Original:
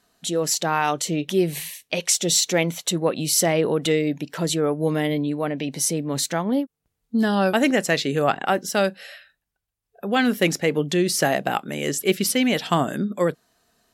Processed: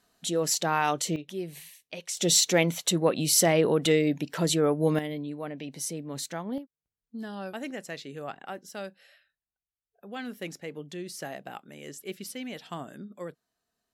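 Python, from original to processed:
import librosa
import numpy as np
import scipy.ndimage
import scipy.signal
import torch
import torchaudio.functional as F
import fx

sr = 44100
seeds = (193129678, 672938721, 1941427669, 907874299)

y = fx.gain(x, sr, db=fx.steps((0.0, -4.0), (1.16, -14.5), (2.17, -2.0), (4.99, -11.0), (6.58, -17.5)))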